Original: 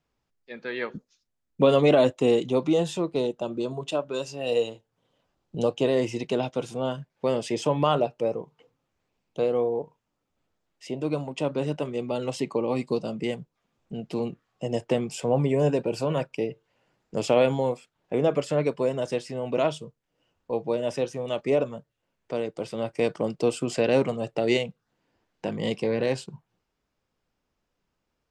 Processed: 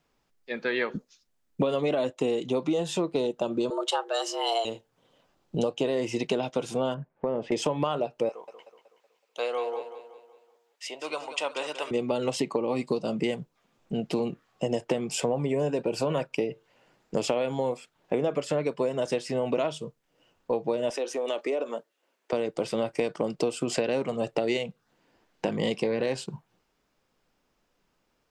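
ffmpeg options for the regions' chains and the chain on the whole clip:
-filter_complex "[0:a]asettb=1/sr,asplit=3[s0][s1][s2];[s0]atrim=end=3.704[s3];[s1]atrim=start=3.7:end=4.65,asetpts=PTS-STARTPTS,afade=t=in:d=0.004:c=qsin,afade=t=out:st=0.946:d=0.004:c=qsin,equalizer=f=520:w=2.9:g=-9.5,afreqshift=220[s4];[s2]atrim=start=4.646[s5];[s3][s4]acrossfade=d=0.004:c1=hsin:c2=qsin[s6];[s6][s5]acrossfade=d=0.004:c1=qsin:c2=hsin,asettb=1/sr,asplit=3[s7][s8][s9];[s7]atrim=end=6.944[s10];[s8]atrim=start=6.94:end=7.52,asetpts=PTS-STARTPTS,afade=t=in:d=0.004:c=qsin,afade=t=out:st=0.576:d=0.004:c=qsin,lowpass=1200,acompressor=threshold=0.0282:ratio=3:attack=3.2:release=140:knee=1:detection=peak[s11];[s9]atrim=start=7.516[s12];[s10][s11]acrossfade=d=0.004:c1=hsin:c2=qsin[s13];[s13][s12]acrossfade=d=0.004:c1=qsin:c2=hsin,asettb=1/sr,asplit=3[s14][s15][s16];[s14]atrim=end=8.294[s17];[s15]atrim=start=8.29:end=11.91,asetpts=PTS-STARTPTS,afade=t=in:d=0.004:c=qsin,afade=t=out:st=3.616:d=0.004:c=qsin,highpass=980,aecho=1:1:187|374|561|748|935:0.282|0.13|0.0596|0.0274|0.0126,atrim=end_sample=159642[s18];[s16]atrim=start=11.906[s19];[s17][s18]acrossfade=d=0.004:c1=hsin:c2=qsin[s20];[s20][s19]acrossfade=d=0.004:c1=qsin:c2=hsin,asettb=1/sr,asplit=3[s21][s22][s23];[s21]atrim=end=20.904[s24];[s22]atrim=start=20.9:end=22.33,asetpts=PTS-STARTPTS,afade=t=in:d=0.004:c=qsin,afade=t=out:st=1.426:d=0.004:c=qsin,highpass=f=290:w=0.5412,highpass=f=290:w=1.3066,acompressor=threshold=0.0251:ratio=4:attack=3.2:release=140:knee=1:detection=peak[s25];[s23]atrim=start=22.326[s26];[s24][s25]acrossfade=d=0.004:c1=hsin:c2=qsin[s27];[s27][s26]acrossfade=d=0.004:c1=qsin:c2=hsin,equalizer=f=71:t=o:w=1.8:g=-8.5,acompressor=threshold=0.0316:ratio=12,volume=2.24"

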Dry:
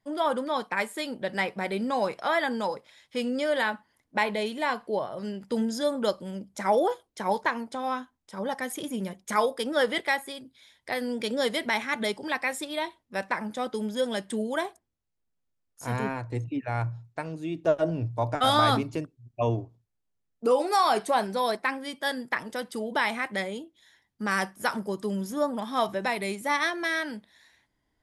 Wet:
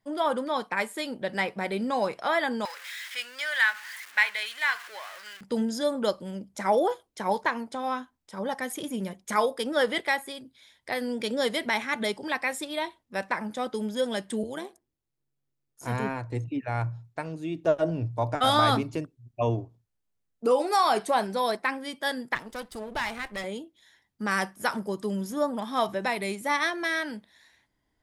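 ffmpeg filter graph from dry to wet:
-filter_complex "[0:a]asettb=1/sr,asplit=3[s0][s1][s2];[s0]atrim=end=2.654[s3];[s1]atrim=start=2.65:end=5.41,asetpts=PTS-STARTPTS,afade=t=in:d=0.004:c=qsin,afade=t=out:st=2.756:d=0.004:c=qsin,aeval=exprs='val(0)+0.5*0.0133*sgn(val(0))':c=same,highpass=f=1700:t=q:w=2.2[s4];[s2]atrim=start=5.406[s5];[s3][s4]acrossfade=d=0.004:c1=hsin:c2=qsin[s6];[s6][s5]acrossfade=d=0.004:c1=qsin:c2=hsin,asettb=1/sr,asplit=3[s7][s8][s9];[s7]atrim=end=14.434[s10];[s8]atrim=start=14.43:end=15.86,asetpts=PTS-STARTPTS,afade=t=in:d=0.004:c=qsin,afade=t=out:st=1.426:d=0.004:c=qsin,equalizer=f=340:w=2.3:g=9.5,acrossover=split=450|2700[s11][s12][s13];[s11]acompressor=threshold=0.0141:ratio=4[s14];[s12]acompressor=threshold=0.0141:ratio=4[s15];[s13]acompressor=threshold=0.00794:ratio=4[s16];[s14][s15][s16]amix=inputs=3:normalize=0,tremolo=f=140:d=0.571[s17];[s9]atrim=start=15.856[s18];[s10][s17]acrossfade=d=0.004:c1=hsin:c2=qsin[s19];[s19][s18]acrossfade=d=0.004:c1=qsin:c2=hsin,asettb=1/sr,asplit=3[s20][s21][s22];[s20]atrim=end=22.354[s23];[s21]atrim=start=22.35:end=23.44,asetpts=PTS-STARTPTS,afade=t=in:d=0.004:c=qsin,afade=t=out:st=1.086:d=0.004:c=qsin,aeval=exprs='if(lt(val(0),0),0.251*val(0),val(0))':c=same,highpass=f=44:p=1,asubboost=boost=9.5:cutoff=110[s24];[s22]atrim=start=23.436[s25];[s23][s24]acrossfade=d=0.004:c1=hsin:c2=qsin[s26];[s26][s25]acrossfade=d=0.004:c1=qsin:c2=hsin"

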